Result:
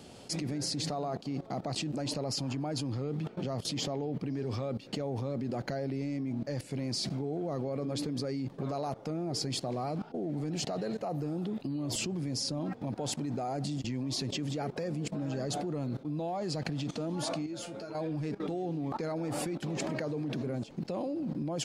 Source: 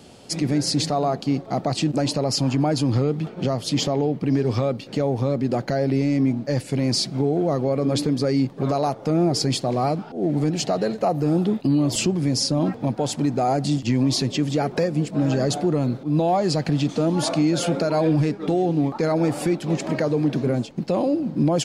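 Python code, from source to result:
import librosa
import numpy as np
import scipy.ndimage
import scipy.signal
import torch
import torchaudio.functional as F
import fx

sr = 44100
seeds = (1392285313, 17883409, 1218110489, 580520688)

y = fx.level_steps(x, sr, step_db=17)
y = fx.comb_fb(y, sr, f0_hz=110.0, decay_s=0.16, harmonics='all', damping=0.0, mix_pct=90, at=(17.46, 17.95))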